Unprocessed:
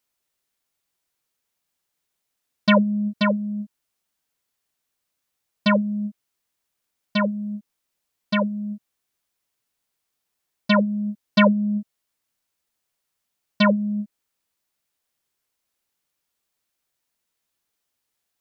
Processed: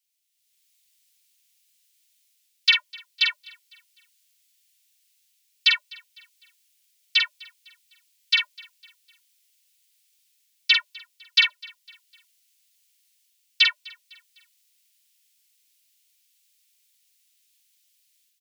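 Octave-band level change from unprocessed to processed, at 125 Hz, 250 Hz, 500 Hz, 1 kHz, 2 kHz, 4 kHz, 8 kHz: under -40 dB, under -40 dB, under -40 dB, -15.5 dB, +3.5 dB, +10.5 dB, n/a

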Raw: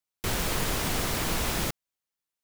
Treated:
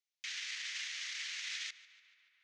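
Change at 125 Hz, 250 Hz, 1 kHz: under -40 dB, under -40 dB, -28.0 dB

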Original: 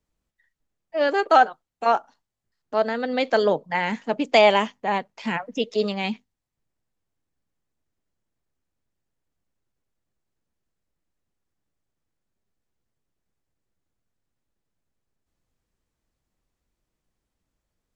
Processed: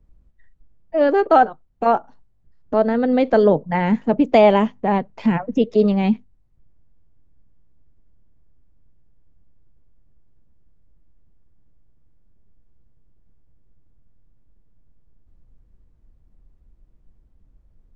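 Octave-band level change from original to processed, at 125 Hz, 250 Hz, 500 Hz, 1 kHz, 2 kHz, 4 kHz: +12.0, +11.0, +5.0, +2.0, -3.0, -7.0 dB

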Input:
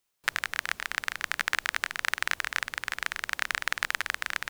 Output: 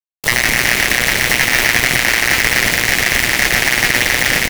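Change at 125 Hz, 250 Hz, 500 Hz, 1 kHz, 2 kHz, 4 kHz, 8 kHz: +31.0, +30.5, +24.5, +13.5, +17.0, +18.5, +22.0 dB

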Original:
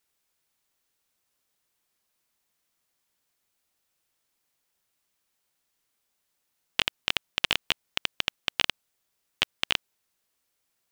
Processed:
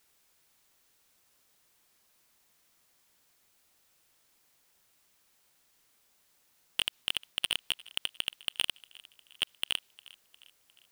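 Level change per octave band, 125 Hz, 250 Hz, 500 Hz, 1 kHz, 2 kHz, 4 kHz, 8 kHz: -11.5, -11.5, -11.5, -11.5, -8.0, -3.5, 0.0 dB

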